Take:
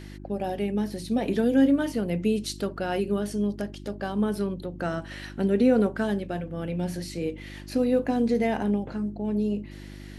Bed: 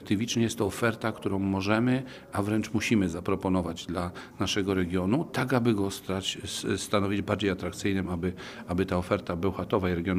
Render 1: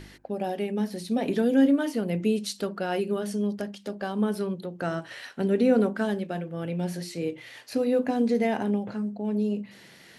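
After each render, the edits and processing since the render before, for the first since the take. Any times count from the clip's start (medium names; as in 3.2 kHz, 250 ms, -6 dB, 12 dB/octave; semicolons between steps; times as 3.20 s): de-hum 50 Hz, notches 7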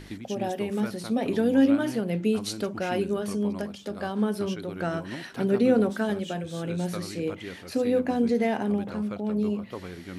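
add bed -12 dB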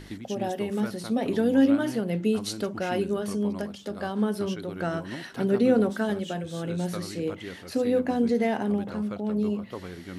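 band-stop 2.4 kHz, Q 16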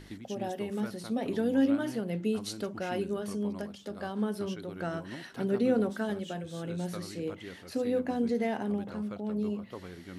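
trim -5.5 dB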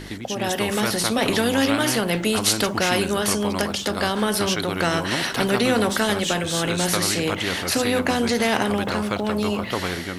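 level rider gain up to 11 dB; spectrum-flattening compressor 2:1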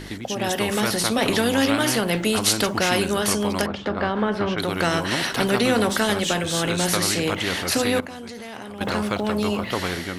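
3.66–4.58 s: low-pass 2 kHz; 8.00–8.81 s: level held to a coarse grid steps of 18 dB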